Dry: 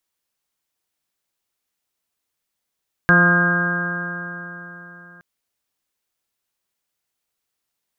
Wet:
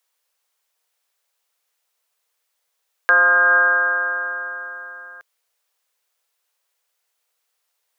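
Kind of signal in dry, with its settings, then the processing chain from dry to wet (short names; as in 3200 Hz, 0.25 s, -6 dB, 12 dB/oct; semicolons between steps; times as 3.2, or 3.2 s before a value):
stretched partials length 2.12 s, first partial 173 Hz, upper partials -8/-10/-10.5/-17/-10/-6/-7/4 dB, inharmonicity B 0.00086, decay 3.73 s, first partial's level -15 dB
in parallel at -1.5 dB: negative-ratio compressor -19 dBFS, ratio -0.5; on the sum: elliptic high-pass 460 Hz, stop band 60 dB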